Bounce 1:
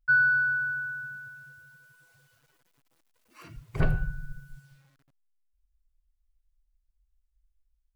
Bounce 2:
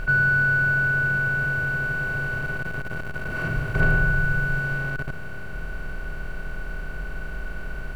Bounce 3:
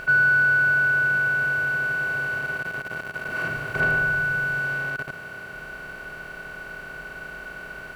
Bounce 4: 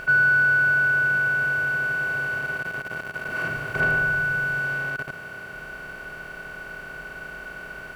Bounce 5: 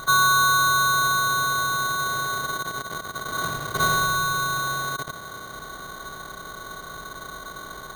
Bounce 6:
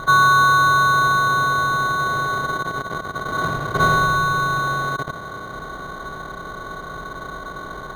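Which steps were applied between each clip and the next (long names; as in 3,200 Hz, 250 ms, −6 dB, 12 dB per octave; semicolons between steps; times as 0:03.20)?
compressor on every frequency bin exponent 0.2
high-pass filter 490 Hz 6 dB per octave; level +2.5 dB
notch filter 4,000 Hz, Q 23
sample-rate reduction 2,600 Hz, jitter 0%
low-pass filter 1,300 Hz 6 dB per octave; level +8 dB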